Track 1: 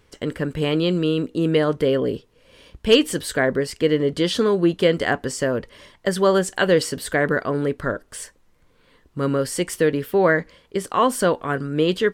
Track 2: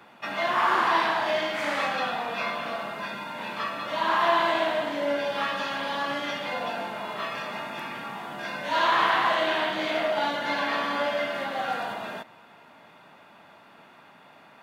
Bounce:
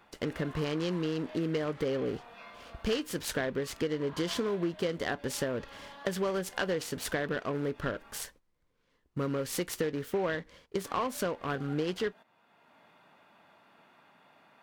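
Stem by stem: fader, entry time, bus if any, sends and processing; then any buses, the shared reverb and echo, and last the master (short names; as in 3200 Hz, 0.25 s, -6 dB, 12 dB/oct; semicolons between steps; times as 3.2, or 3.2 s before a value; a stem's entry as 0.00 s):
-4.0 dB, 0.00 s, no send, gate -49 dBFS, range -13 dB; noise-modulated delay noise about 1400 Hz, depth 0.033 ms
-9.0 dB, 0.00 s, muted 8.24–10.84, no send, auto duck -11 dB, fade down 0.50 s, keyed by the first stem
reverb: off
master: compressor 5:1, threshold -29 dBFS, peak gain reduction 14.5 dB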